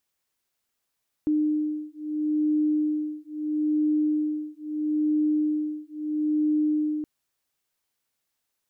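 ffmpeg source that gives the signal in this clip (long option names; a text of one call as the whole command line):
ffmpeg -f lavfi -i "aevalsrc='0.0531*(sin(2*PI*303*t)+sin(2*PI*303.76*t))':duration=5.77:sample_rate=44100" out.wav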